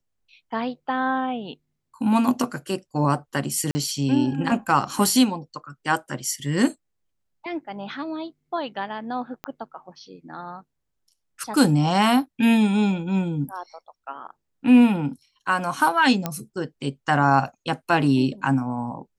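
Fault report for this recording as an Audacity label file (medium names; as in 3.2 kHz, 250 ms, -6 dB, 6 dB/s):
3.710000	3.750000	dropout 40 ms
9.440000	9.440000	pop -17 dBFS
16.260000	16.260000	pop -10 dBFS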